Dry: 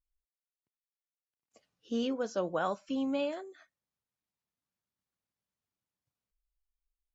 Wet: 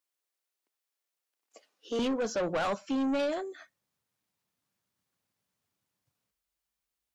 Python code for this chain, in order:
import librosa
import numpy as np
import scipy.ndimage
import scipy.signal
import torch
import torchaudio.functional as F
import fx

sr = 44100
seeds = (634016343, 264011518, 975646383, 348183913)

y = fx.highpass(x, sr, hz=fx.steps((0.0, 310.0), (1.99, 74.0)), slope=24)
y = 10.0 ** (-34.5 / 20.0) * np.tanh(y / 10.0 ** (-34.5 / 20.0))
y = y * 10.0 ** (8.5 / 20.0)